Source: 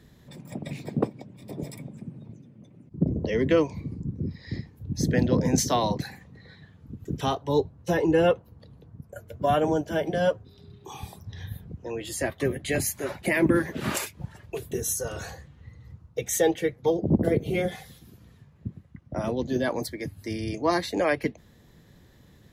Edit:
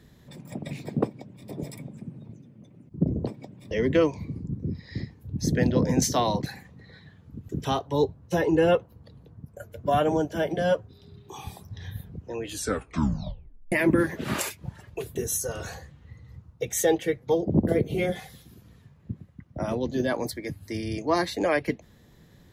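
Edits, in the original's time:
0:01.04–0:01.48: duplicate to 0:03.27
0:12.00: tape stop 1.28 s

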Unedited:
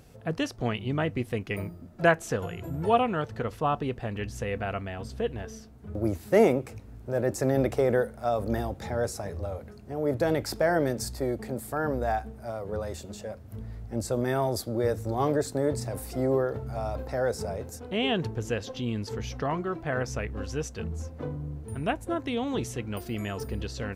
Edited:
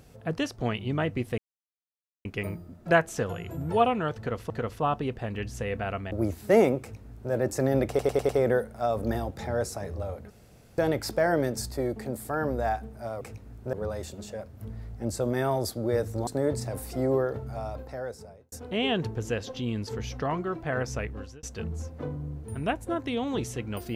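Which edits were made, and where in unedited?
0:01.38: splice in silence 0.87 s
0:03.31–0:03.63: repeat, 2 plays
0:04.92–0:05.94: remove
0:06.63–0:07.15: duplicate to 0:12.64
0:07.72: stutter 0.10 s, 5 plays
0:09.73–0:10.21: fill with room tone
0:15.18–0:15.47: remove
0:16.49–0:17.72: fade out
0:20.25–0:20.63: fade out

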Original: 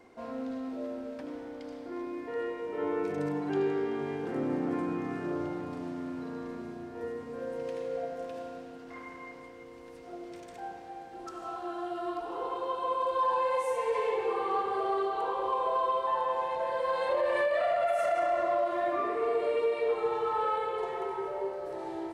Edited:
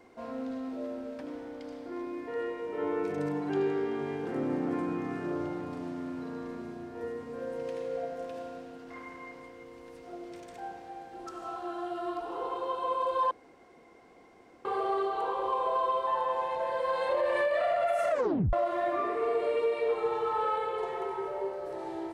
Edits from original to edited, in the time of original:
0:13.31–0:14.65: fill with room tone
0:18.10: tape stop 0.43 s

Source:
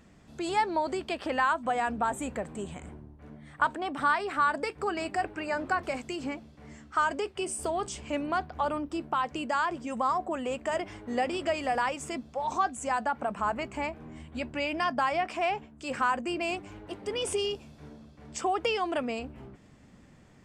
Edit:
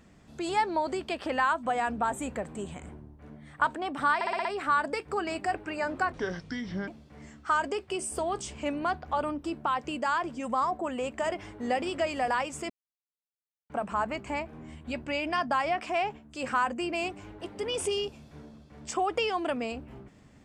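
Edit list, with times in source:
0:04.15: stutter 0.06 s, 6 plays
0:05.82–0:06.35: play speed 70%
0:12.17–0:13.17: silence

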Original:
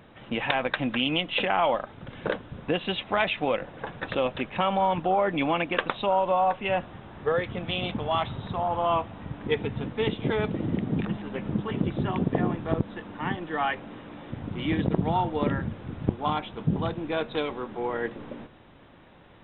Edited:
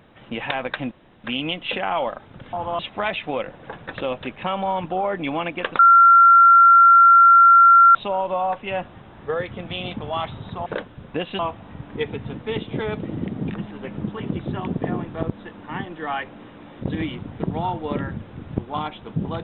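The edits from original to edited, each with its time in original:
0:00.91: splice in room tone 0.33 s
0:02.20–0:02.93: swap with 0:08.64–0:08.90
0:05.93: insert tone 1,370 Hz −7.5 dBFS 2.16 s
0:14.34–0:14.91: reverse

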